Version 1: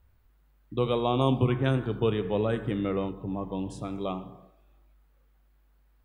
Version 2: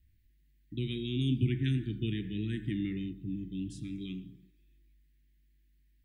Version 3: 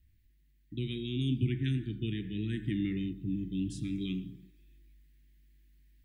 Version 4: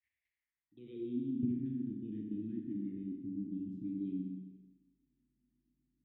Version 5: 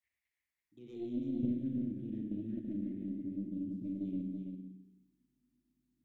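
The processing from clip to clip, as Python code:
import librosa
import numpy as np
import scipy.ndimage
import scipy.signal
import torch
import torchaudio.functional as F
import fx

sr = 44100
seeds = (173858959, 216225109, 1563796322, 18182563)

y1 = scipy.signal.sosfilt(scipy.signal.cheby1(4, 1.0, [340.0, 1800.0], 'bandstop', fs=sr, output='sos'), x)
y1 = y1 * librosa.db_to_amplitude(-3.0)
y2 = fx.rider(y1, sr, range_db=10, speed_s=2.0)
y3 = fx.level_steps(y2, sr, step_db=13)
y3 = fx.filter_sweep_bandpass(y3, sr, from_hz=2100.0, to_hz=260.0, start_s=0.33, end_s=1.17, q=4.3)
y3 = fx.rev_schroeder(y3, sr, rt60_s=1.2, comb_ms=29, drr_db=1.0)
y3 = y3 * librosa.db_to_amplitude(5.5)
y4 = fx.tracing_dist(y3, sr, depth_ms=0.16)
y4 = y4 + 10.0 ** (-6.0 / 20.0) * np.pad(y4, (int(332 * sr / 1000.0), 0))[:len(y4)]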